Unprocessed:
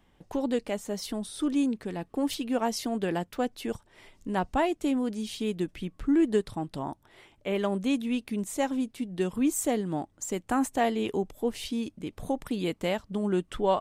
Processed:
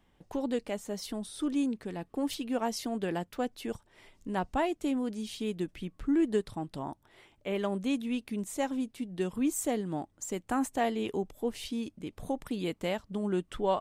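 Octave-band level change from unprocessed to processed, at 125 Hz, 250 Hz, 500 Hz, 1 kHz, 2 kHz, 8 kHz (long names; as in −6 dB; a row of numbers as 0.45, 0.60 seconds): −3.5, −3.5, −3.5, −3.5, −3.5, −3.5 decibels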